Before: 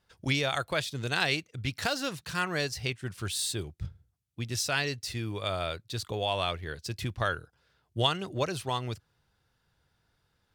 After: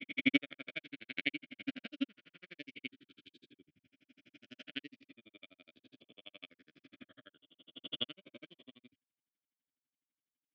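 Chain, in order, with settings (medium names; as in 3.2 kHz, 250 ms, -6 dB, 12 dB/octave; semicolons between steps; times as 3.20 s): reverse spectral sustain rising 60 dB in 1.90 s; tone controls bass -2 dB, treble -13 dB; transient shaper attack -6 dB, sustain +1 dB; vowel filter i; granulator 48 ms, grains 12 per s, spray 11 ms, pitch spread up and down by 0 st; cabinet simulation 120–7100 Hz, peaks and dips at 400 Hz -4 dB, 610 Hz +8 dB, 3 kHz +6 dB; upward expansion 2.5:1, over -50 dBFS; trim +12 dB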